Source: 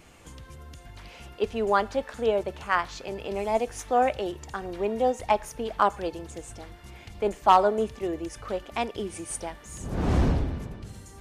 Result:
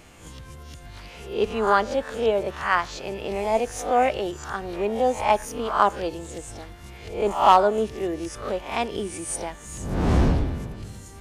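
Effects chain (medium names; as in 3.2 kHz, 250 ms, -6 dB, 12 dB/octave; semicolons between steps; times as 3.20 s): reverse spectral sustain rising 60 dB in 0.45 s; trim +2 dB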